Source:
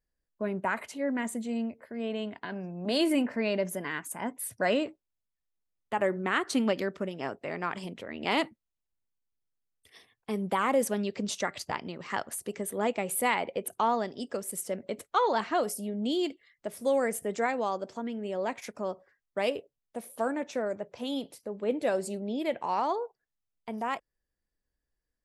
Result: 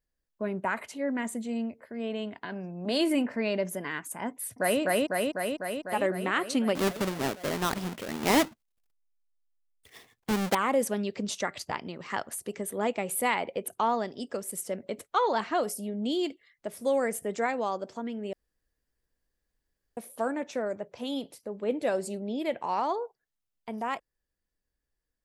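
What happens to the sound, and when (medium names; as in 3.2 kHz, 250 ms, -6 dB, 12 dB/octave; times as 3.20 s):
4.31–4.81 s: echo throw 250 ms, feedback 75%, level 0 dB
6.75–10.55 s: square wave that keeps the level
18.33–19.97 s: room tone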